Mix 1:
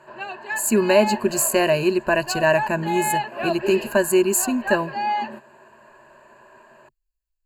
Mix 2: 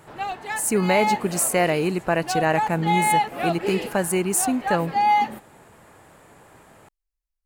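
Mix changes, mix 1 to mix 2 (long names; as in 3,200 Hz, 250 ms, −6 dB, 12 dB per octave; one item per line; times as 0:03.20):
background: remove resonant band-pass 1,000 Hz, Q 0.52
master: remove EQ curve with evenly spaced ripples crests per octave 1.4, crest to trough 15 dB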